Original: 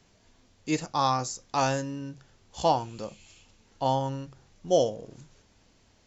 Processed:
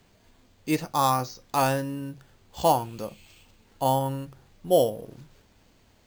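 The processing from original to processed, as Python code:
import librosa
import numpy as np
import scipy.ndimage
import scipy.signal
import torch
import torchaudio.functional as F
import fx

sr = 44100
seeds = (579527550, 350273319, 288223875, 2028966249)

y = np.repeat(scipy.signal.resample_poly(x, 1, 4), 4)[:len(x)]
y = y * 10.0 ** (2.5 / 20.0)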